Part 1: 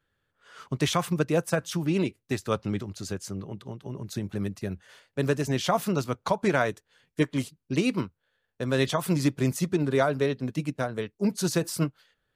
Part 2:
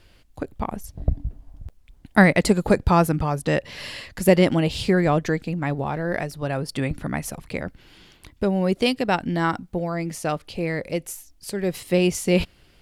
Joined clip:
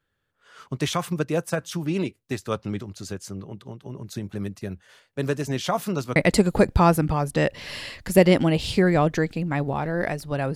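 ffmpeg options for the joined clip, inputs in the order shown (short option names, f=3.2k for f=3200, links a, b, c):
-filter_complex "[0:a]apad=whole_dur=10.55,atrim=end=10.55,atrim=end=6.162[a];[1:a]atrim=start=2.268:end=6.66[b];[a][b]acrossfade=d=0.004:c1=hsin:c2=hsin"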